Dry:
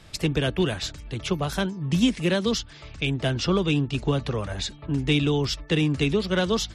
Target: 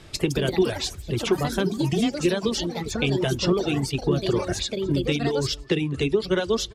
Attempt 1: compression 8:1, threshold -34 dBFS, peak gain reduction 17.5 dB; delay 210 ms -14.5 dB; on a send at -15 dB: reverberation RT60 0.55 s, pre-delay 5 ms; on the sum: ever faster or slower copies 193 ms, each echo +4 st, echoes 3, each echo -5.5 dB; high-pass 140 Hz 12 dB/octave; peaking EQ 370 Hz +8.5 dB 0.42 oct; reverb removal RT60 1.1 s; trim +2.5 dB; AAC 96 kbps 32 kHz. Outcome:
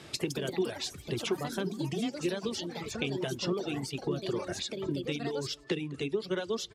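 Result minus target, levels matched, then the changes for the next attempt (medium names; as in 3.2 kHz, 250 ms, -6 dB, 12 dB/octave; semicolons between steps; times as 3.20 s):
compression: peak gain reduction +9.5 dB; 125 Hz band -2.5 dB
change: compression 8:1, threshold -23 dBFS, peak gain reduction 8 dB; remove: high-pass 140 Hz 12 dB/octave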